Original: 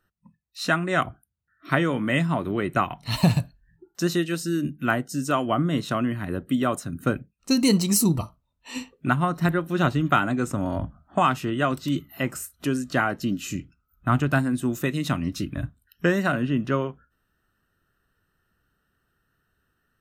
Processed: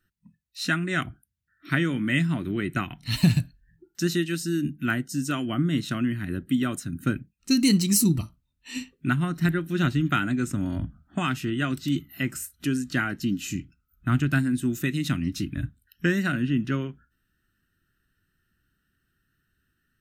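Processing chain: band shelf 720 Hz -13 dB

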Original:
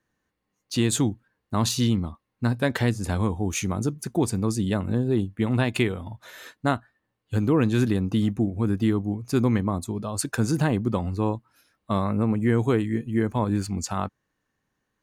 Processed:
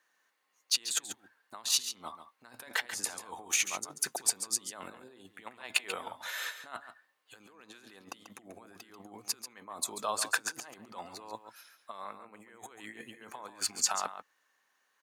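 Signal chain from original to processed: negative-ratio compressor -30 dBFS, ratio -0.5; HPF 860 Hz 12 dB/oct; echo 0.139 s -10.5 dB

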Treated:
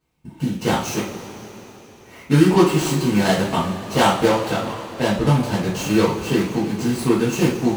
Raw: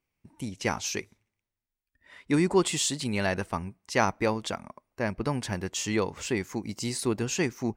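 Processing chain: median filter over 25 samples; tilt shelf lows -3.5 dB, about 1200 Hz; in parallel at +1 dB: compressor, threshold -41 dBFS, peak gain reduction 19 dB; on the sum: two-slope reverb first 0.36 s, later 4 s, from -18 dB, DRR -8.5 dB; gain +3 dB

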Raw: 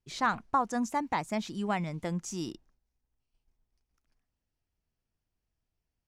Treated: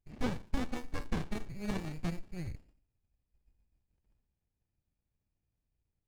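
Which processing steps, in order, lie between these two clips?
inverted band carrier 2500 Hz; Butterworth band-stop 1100 Hz, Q 1.8; on a send at -13 dB: reverb RT60 0.65 s, pre-delay 8 ms; on the sum: running maximum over 65 samples; gain +2.5 dB

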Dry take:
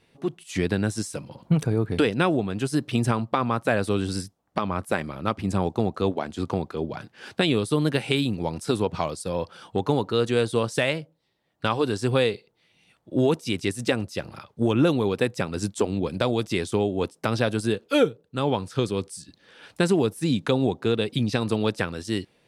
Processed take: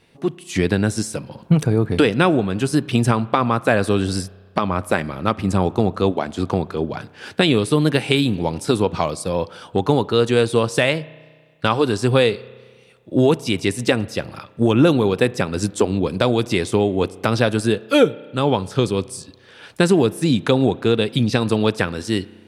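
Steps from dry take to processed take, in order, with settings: spring tank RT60 1.6 s, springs 32 ms, chirp 55 ms, DRR 19.5 dB; gain +6 dB

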